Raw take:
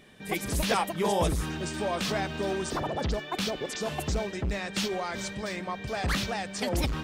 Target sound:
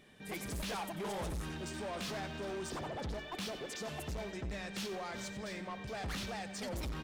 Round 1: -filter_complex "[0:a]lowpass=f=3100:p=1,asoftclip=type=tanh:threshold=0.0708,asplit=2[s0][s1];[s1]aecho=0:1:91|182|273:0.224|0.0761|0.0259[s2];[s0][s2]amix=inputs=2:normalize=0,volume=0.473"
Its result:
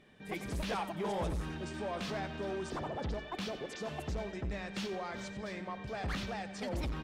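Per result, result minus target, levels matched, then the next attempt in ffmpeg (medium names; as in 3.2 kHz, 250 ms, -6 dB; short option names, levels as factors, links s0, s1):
saturation: distortion -7 dB; 4 kHz band -3.0 dB
-filter_complex "[0:a]lowpass=f=3100:p=1,asoftclip=type=tanh:threshold=0.0316,asplit=2[s0][s1];[s1]aecho=0:1:91|182|273:0.224|0.0761|0.0259[s2];[s0][s2]amix=inputs=2:normalize=0,volume=0.473"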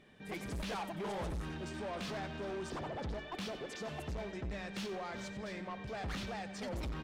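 4 kHz band -2.5 dB
-filter_complex "[0:a]asoftclip=type=tanh:threshold=0.0316,asplit=2[s0][s1];[s1]aecho=0:1:91|182|273:0.224|0.0761|0.0259[s2];[s0][s2]amix=inputs=2:normalize=0,volume=0.473"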